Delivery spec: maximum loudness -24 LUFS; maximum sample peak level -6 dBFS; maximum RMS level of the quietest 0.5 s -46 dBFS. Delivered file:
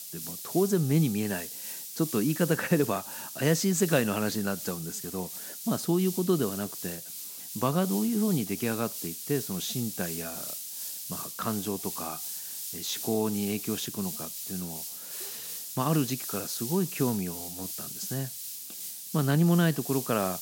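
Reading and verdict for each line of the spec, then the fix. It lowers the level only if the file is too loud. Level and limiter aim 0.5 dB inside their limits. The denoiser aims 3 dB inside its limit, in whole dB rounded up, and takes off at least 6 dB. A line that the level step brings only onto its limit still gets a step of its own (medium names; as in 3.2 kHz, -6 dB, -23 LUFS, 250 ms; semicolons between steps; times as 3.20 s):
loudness -29.5 LUFS: pass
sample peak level -10.5 dBFS: pass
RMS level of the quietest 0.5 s -41 dBFS: fail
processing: noise reduction 8 dB, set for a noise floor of -41 dBFS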